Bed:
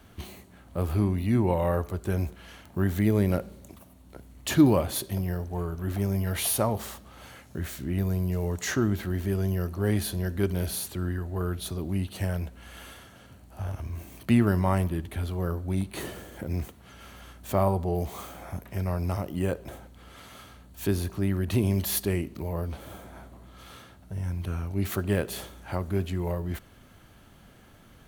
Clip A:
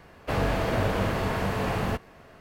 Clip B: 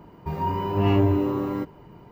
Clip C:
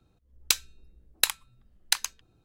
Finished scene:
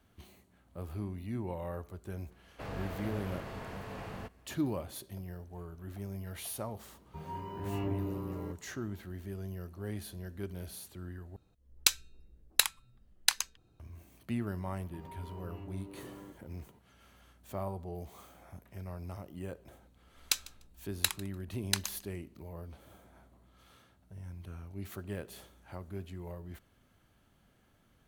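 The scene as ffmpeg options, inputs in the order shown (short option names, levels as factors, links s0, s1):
-filter_complex "[2:a]asplit=2[s0][s1];[3:a]asplit=2[s2][s3];[0:a]volume=0.2[s4];[s1]acompressor=threshold=0.0282:ratio=6:attack=3.2:release=140:knee=1:detection=peak[s5];[s3]aecho=1:1:148|296:0.0794|0.0135[s6];[s4]asplit=2[s7][s8];[s7]atrim=end=11.364[s9];[s2]atrim=end=2.44,asetpts=PTS-STARTPTS,volume=0.794[s10];[s8]atrim=start=13.796[s11];[1:a]atrim=end=2.4,asetpts=PTS-STARTPTS,volume=0.168,afade=t=in:d=0.004:c=hsin,afade=t=out:st=2.396:d=0.004:c=hsin,adelay=2310[s12];[s0]atrim=end=2.11,asetpts=PTS-STARTPTS,volume=0.168,afade=t=in:d=0.004:c=hsin,afade=t=out:st=2.106:d=0.004:c=hsin,adelay=6880[s13];[s5]atrim=end=2.11,asetpts=PTS-STARTPTS,volume=0.188,afade=t=in:d=0.004:c=hsin,afade=t=out:st=2.106:d=0.004:c=hsin,adelay=14680[s14];[s6]atrim=end=2.44,asetpts=PTS-STARTPTS,volume=0.473,afade=t=in:d=0.004:c=hsin,afade=t=out:st=2.436:d=0.004:c=hsin,adelay=19810[s15];[s9][s10]acrossfade=d=0.004:c1=hsin:c2=hsin[s16];[s16][s11]acrossfade=d=0.004:c1=hsin:c2=hsin[s17];[s17][s12][s13][s14][s15]amix=inputs=5:normalize=0"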